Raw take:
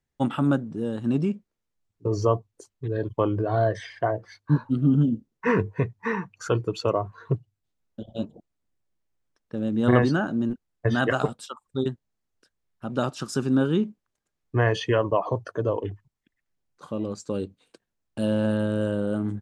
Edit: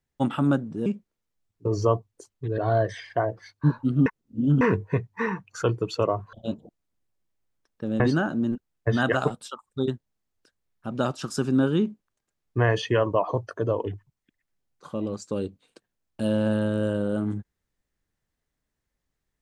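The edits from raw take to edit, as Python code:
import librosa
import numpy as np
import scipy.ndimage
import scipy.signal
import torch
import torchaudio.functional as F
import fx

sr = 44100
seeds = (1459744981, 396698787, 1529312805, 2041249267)

y = fx.edit(x, sr, fx.cut(start_s=0.86, length_s=0.4),
    fx.cut(start_s=2.98, length_s=0.46),
    fx.reverse_span(start_s=4.92, length_s=0.55),
    fx.cut(start_s=7.19, length_s=0.85),
    fx.cut(start_s=9.71, length_s=0.27), tone=tone)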